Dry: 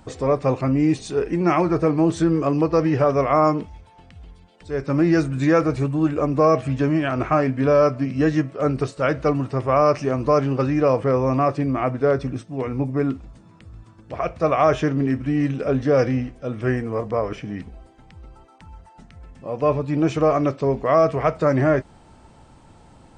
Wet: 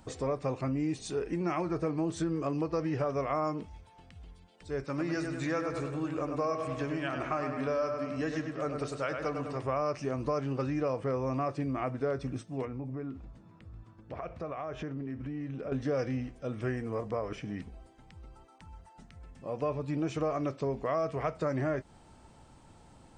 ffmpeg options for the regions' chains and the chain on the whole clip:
-filter_complex "[0:a]asettb=1/sr,asplit=3[a][b][c];[a]atrim=end=4.854[d];[b]atrim=start=4.85:end=9.63,asetpts=PTS-STARTPTS,afade=t=in:d=0.004:c=qsin,afade=t=out:st=4.776:d=0.004:c=qsin,lowshelf=f=400:g=-8.5,asplit=2[e][f];[f]adelay=100,lowpass=f=3.4k:p=1,volume=-6dB,asplit=2[g][h];[h]adelay=100,lowpass=f=3.4k:p=1,volume=0.55,asplit=2[i][j];[j]adelay=100,lowpass=f=3.4k:p=1,volume=0.55,asplit=2[k][l];[l]adelay=100,lowpass=f=3.4k:p=1,volume=0.55,asplit=2[m][n];[n]adelay=100,lowpass=f=3.4k:p=1,volume=0.55,asplit=2[o][p];[p]adelay=100,lowpass=f=3.4k:p=1,volume=0.55,asplit=2[q][r];[r]adelay=100,lowpass=f=3.4k:p=1,volume=0.55[s];[e][g][i][k][m][o][q][s]amix=inputs=8:normalize=0,atrim=end_sample=210798[t];[c]atrim=start=9.626[u];[d][t]acrossfade=d=0.004:c1=hsin:c2=qsin[v];[v][u]acrossfade=d=0.004:c1=qsin:c2=hsin,asettb=1/sr,asplit=3[w][x][y];[w]atrim=end=12.654[z];[x]atrim=start=12.65:end=15.72,asetpts=PTS-STARTPTS,afade=t=in:d=0.004:c=qsin,afade=t=out:st=3.066:d=0.004:c=qsin,acompressor=threshold=-28dB:ratio=6:attack=3.2:release=140:knee=1:detection=peak,aemphasis=mode=reproduction:type=75fm[aa];[y]atrim=start=15.716[ab];[z][aa]acrossfade=d=0.004:c1=hsin:c2=qsin[ac];[ac][ab]acrossfade=d=0.004:c1=qsin:c2=hsin,highshelf=f=5k:g=5,acompressor=threshold=-23dB:ratio=2.5,volume=-7.5dB"

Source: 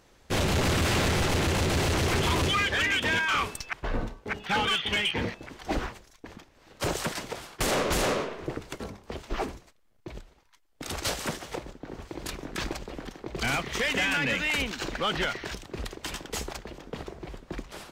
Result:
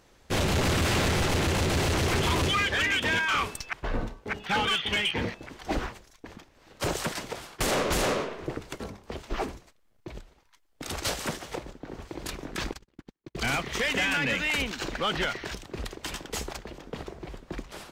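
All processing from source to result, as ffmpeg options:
-filter_complex "[0:a]asettb=1/sr,asplit=3[a][b][c];[a]atrim=end=12.714[d];[b]atrim=start=12.71:end=13.37,asetpts=PTS-STARTPTS,afade=t=in:d=0.004:c=qsin,afade=t=out:st=0.656:d=0.004:c=qsin,equalizer=f=650:w=2.3:g=-12,agate=range=-44dB:threshold=-37dB:ratio=16:release=100:detection=peak[e];[c]atrim=start=13.366[f];[d][e]acrossfade=d=0.004:c1=hsin:c2=qsin[g];[g][f]acrossfade=d=0.004:c1=qsin:c2=hsin"

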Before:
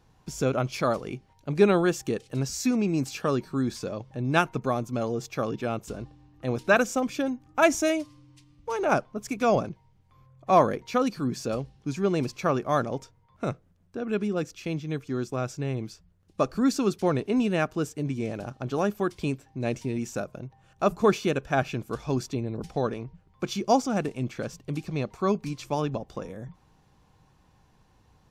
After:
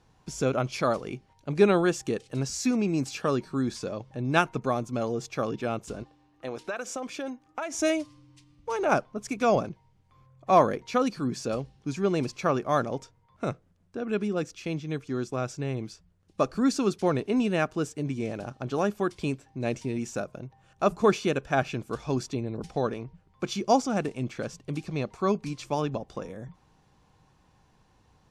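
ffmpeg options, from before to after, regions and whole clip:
-filter_complex "[0:a]asettb=1/sr,asplit=3[a][b][c];[a]atrim=end=6.034[d];[b]atrim=start=6.03:end=7.79,asetpts=PTS-STARTPTS,afade=t=in:d=0.004:c=qsin,afade=t=out:st=1.756:d=0.004:c=qsin,bass=f=250:g=-13,treble=f=4k:g=-2,acompressor=threshold=-28dB:ratio=16:attack=3.2:release=140:knee=1:detection=peak[e];[c]atrim=start=7.786[f];[d][e]acrossfade=d=0.004:c1=hsin:c2=qsin[g];[g][f]acrossfade=d=0.004:c1=qsin:c2=hsin,lowpass=f=11k:w=0.5412,lowpass=f=11k:w=1.3066,lowshelf=f=160:g=-3"

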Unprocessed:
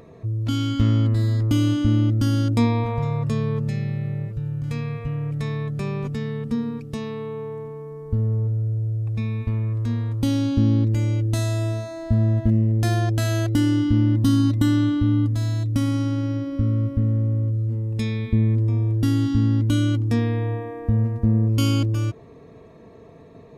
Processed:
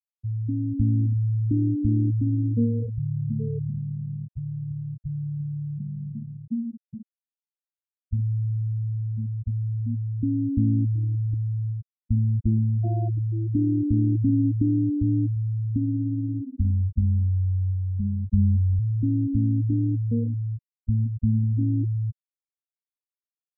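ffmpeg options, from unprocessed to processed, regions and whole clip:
-filter_complex "[0:a]asettb=1/sr,asplit=3[a][b][c];[a]atrim=end=16.464[d];[b]atrim=start=16.46:end=18.79,asetpts=PTS-STARTPTS,afade=t=in:d=0.004:c=qsin,afade=t=out:st=2.326:d=0.004:c=qsin,equalizer=f=77:t=o:w=0.85:g=5,afreqshift=-17,asplit=2[e][f];[f]adelay=40,volume=-7.5dB[g];[e][g]amix=inputs=2:normalize=0,atrim=end_sample=102753[h];[c]atrim=start=18.786[i];[d][h]acrossfade=d=0.004:c1=hsin:c2=qsin[j];[j][i]acrossfade=d=0.004:c1=qsin:c2=hsin,afftfilt=real='re*gte(hypot(re,im),0.355)':imag='im*gte(hypot(re,im),0.355)':win_size=1024:overlap=0.75,lowpass=1k,volume=-3dB"

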